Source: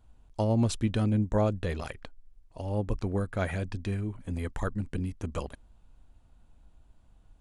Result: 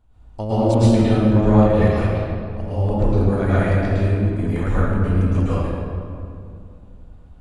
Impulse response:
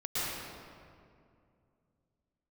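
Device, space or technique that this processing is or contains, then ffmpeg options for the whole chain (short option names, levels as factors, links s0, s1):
swimming-pool hall: -filter_complex "[1:a]atrim=start_sample=2205[s0];[0:a][s0]afir=irnorm=-1:irlink=0,highshelf=f=3600:g=-7,volume=1.78"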